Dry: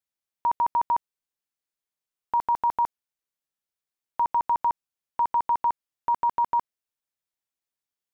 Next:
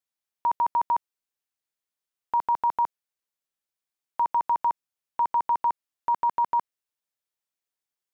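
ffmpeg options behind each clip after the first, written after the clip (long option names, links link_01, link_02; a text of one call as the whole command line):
ffmpeg -i in.wav -af "lowshelf=frequency=210:gain=-5.5" out.wav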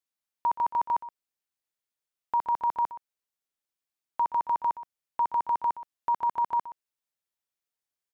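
ffmpeg -i in.wav -af "aecho=1:1:123:0.168,volume=-2dB" out.wav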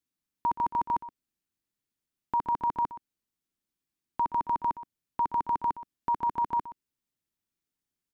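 ffmpeg -i in.wav -af "lowshelf=frequency=400:width_type=q:width=1.5:gain=10" out.wav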